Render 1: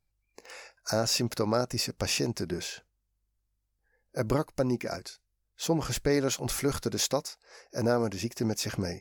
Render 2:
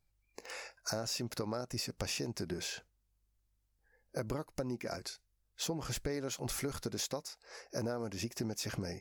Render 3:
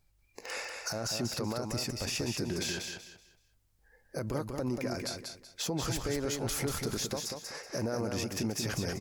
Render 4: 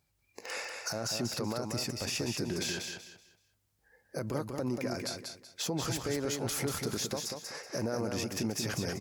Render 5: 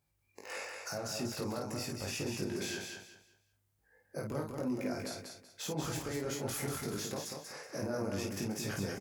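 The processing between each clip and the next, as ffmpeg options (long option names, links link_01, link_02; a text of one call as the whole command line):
ffmpeg -i in.wav -af "acompressor=threshold=-36dB:ratio=6,volume=1dB" out.wav
ffmpeg -i in.wav -filter_complex "[0:a]alimiter=level_in=8dB:limit=-24dB:level=0:latency=1:release=49,volume=-8dB,asplit=2[link_01][link_02];[link_02]aecho=0:1:189|378|567|756:0.562|0.157|0.0441|0.0123[link_03];[link_01][link_03]amix=inputs=2:normalize=0,volume=7dB" out.wav
ffmpeg -i in.wav -af "highpass=89" out.wav
ffmpeg -i in.wav -filter_complex "[0:a]equalizer=frequency=4700:width_type=o:width=1.3:gain=-4.5,asplit=2[link_01][link_02];[link_02]aecho=0:1:20|51:0.708|0.596[link_03];[link_01][link_03]amix=inputs=2:normalize=0,volume=-5dB" out.wav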